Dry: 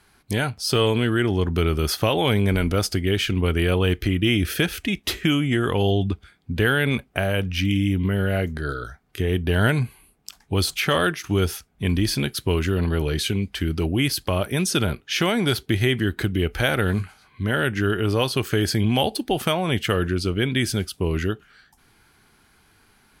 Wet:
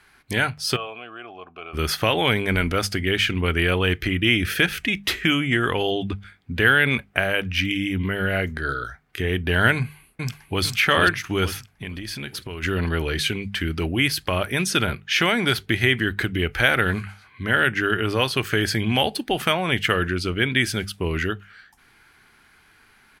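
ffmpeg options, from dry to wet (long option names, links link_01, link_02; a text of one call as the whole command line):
ffmpeg -i in.wav -filter_complex "[0:a]asplit=3[link_01][link_02][link_03];[link_01]afade=type=out:start_time=0.75:duration=0.02[link_04];[link_02]asplit=3[link_05][link_06][link_07];[link_05]bandpass=frequency=730:width_type=q:width=8,volume=0dB[link_08];[link_06]bandpass=frequency=1090:width_type=q:width=8,volume=-6dB[link_09];[link_07]bandpass=frequency=2440:width_type=q:width=8,volume=-9dB[link_10];[link_08][link_09][link_10]amix=inputs=3:normalize=0,afade=type=in:start_time=0.75:duration=0.02,afade=type=out:start_time=1.73:duration=0.02[link_11];[link_03]afade=type=in:start_time=1.73:duration=0.02[link_12];[link_04][link_11][link_12]amix=inputs=3:normalize=0,asplit=2[link_13][link_14];[link_14]afade=type=in:start_time=9.74:duration=0.01,afade=type=out:start_time=10.63:duration=0.01,aecho=0:1:450|900|1350|1800|2250|2700:0.707946|0.318576|0.143359|0.0645116|0.0290302|0.0130636[link_15];[link_13][link_15]amix=inputs=2:normalize=0,asplit=3[link_16][link_17][link_18];[link_16]afade=type=out:start_time=11.71:duration=0.02[link_19];[link_17]acompressor=threshold=-27dB:ratio=12:attack=3.2:release=140:knee=1:detection=peak,afade=type=in:start_time=11.71:duration=0.02,afade=type=out:start_time=12.62:duration=0.02[link_20];[link_18]afade=type=in:start_time=12.62:duration=0.02[link_21];[link_19][link_20][link_21]amix=inputs=3:normalize=0,equalizer=frequency=1900:width=0.87:gain=9,bandreject=frequency=50:width_type=h:width=6,bandreject=frequency=100:width_type=h:width=6,bandreject=frequency=150:width_type=h:width=6,bandreject=frequency=200:width_type=h:width=6,volume=-2dB" out.wav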